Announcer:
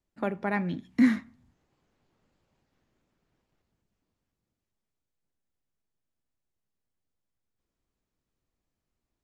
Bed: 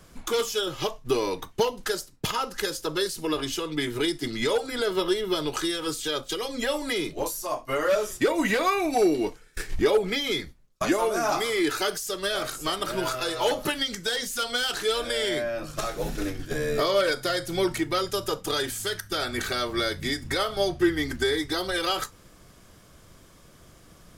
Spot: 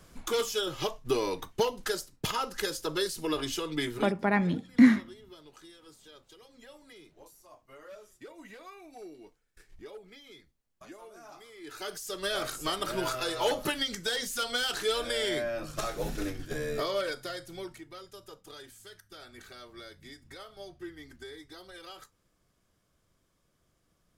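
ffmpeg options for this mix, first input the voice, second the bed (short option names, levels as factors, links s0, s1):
-filter_complex "[0:a]adelay=3800,volume=1.41[s0];[1:a]volume=7.94,afade=t=out:st=3.86:d=0.27:silence=0.0841395,afade=t=in:st=11.61:d=0.73:silence=0.0841395,afade=t=out:st=16.11:d=1.71:silence=0.141254[s1];[s0][s1]amix=inputs=2:normalize=0"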